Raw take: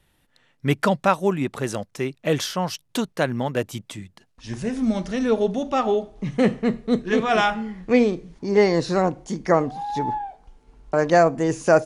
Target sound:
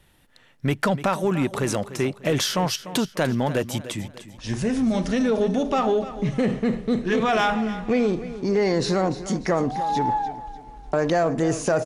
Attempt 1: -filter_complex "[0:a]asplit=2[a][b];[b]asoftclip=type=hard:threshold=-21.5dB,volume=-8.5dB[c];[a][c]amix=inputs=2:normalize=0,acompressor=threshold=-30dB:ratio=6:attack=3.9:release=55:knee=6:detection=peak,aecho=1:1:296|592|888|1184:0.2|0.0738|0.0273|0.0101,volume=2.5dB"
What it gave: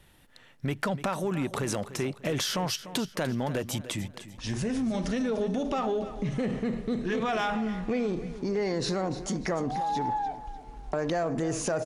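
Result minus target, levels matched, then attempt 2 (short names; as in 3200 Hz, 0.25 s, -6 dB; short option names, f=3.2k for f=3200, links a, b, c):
compressor: peak gain reduction +8 dB
-filter_complex "[0:a]asplit=2[a][b];[b]asoftclip=type=hard:threshold=-21.5dB,volume=-8.5dB[c];[a][c]amix=inputs=2:normalize=0,acompressor=threshold=-20.5dB:ratio=6:attack=3.9:release=55:knee=6:detection=peak,aecho=1:1:296|592|888|1184:0.2|0.0738|0.0273|0.0101,volume=2.5dB"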